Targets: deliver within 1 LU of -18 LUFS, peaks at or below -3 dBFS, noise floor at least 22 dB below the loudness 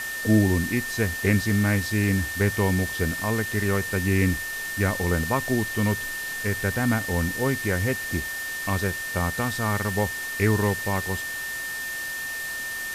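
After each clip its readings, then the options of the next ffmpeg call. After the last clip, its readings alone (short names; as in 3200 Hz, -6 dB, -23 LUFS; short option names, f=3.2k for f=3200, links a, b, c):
steady tone 1800 Hz; tone level -30 dBFS; noise floor -32 dBFS; noise floor target -47 dBFS; loudness -25.0 LUFS; peak -7.5 dBFS; loudness target -18.0 LUFS
-> -af "bandreject=f=1.8k:w=30"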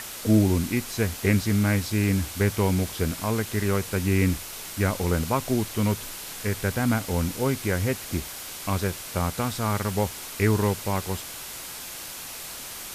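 steady tone none; noise floor -38 dBFS; noise floor target -48 dBFS
-> -af "afftdn=nr=10:nf=-38"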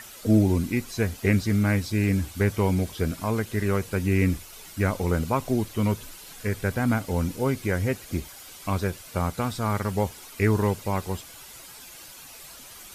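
noise floor -45 dBFS; noise floor target -48 dBFS
-> -af "afftdn=nr=6:nf=-45"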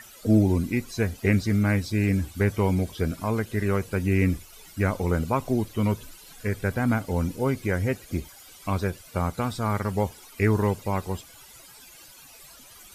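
noise floor -49 dBFS; loudness -26.0 LUFS; peak -8.5 dBFS; loudness target -18.0 LUFS
-> -af "volume=8dB,alimiter=limit=-3dB:level=0:latency=1"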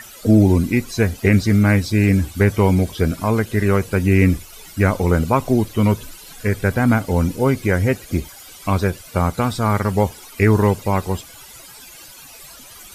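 loudness -18.5 LUFS; peak -3.0 dBFS; noise floor -41 dBFS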